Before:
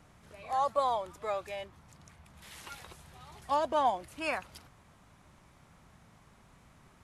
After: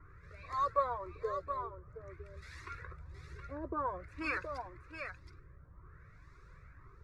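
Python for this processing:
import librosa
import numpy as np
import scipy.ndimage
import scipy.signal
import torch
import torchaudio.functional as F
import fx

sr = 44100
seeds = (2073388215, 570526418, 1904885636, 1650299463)

p1 = fx.peak_eq(x, sr, hz=650.0, db=-15.0, octaves=0.57)
p2 = fx.fixed_phaser(p1, sr, hz=830.0, stages=6)
p3 = fx.filter_lfo_lowpass(p2, sr, shape='sine', hz=0.51, low_hz=420.0, high_hz=3900.0, q=1.3)
p4 = fx.low_shelf(p3, sr, hz=410.0, db=3.0)
p5 = p4 + fx.echo_single(p4, sr, ms=721, db=-7.0, dry=0)
p6 = fx.comb_cascade(p5, sr, direction='rising', hz=1.9)
y = p6 * 10.0 ** (7.5 / 20.0)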